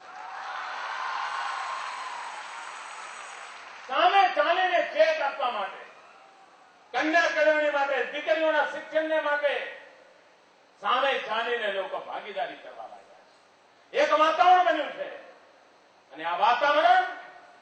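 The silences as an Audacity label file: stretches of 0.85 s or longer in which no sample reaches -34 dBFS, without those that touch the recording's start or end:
5.820000	6.940000	silence
9.780000	10.830000	silence
12.860000	13.940000	silence
15.160000	16.180000	silence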